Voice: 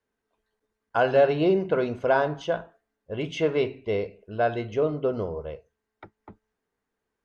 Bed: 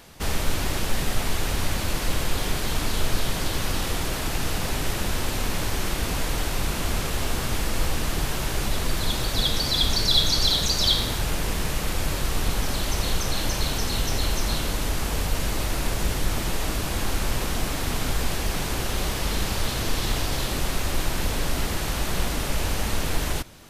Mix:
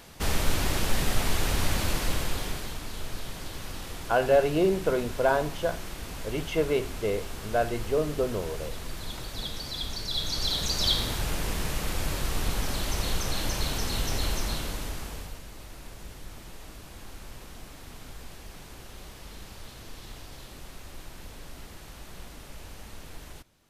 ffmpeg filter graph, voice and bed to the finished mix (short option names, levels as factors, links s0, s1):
-filter_complex "[0:a]adelay=3150,volume=0.794[s0];[1:a]volume=2.24,afade=t=out:st=1.83:d=0.96:silence=0.281838,afade=t=in:st=10.09:d=0.8:silence=0.398107,afade=t=out:st=14.29:d=1.13:silence=0.188365[s1];[s0][s1]amix=inputs=2:normalize=0"